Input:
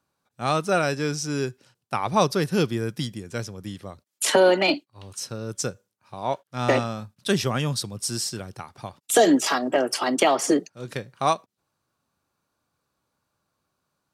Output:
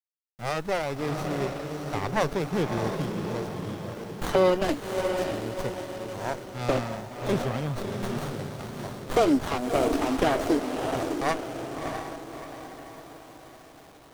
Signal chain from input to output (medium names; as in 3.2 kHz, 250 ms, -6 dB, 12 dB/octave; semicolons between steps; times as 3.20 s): echo that smears into a reverb 643 ms, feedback 49%, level -5 dB; word length cut 8-bit, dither none; sliding maximum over 17 samples; trim -3.5 dB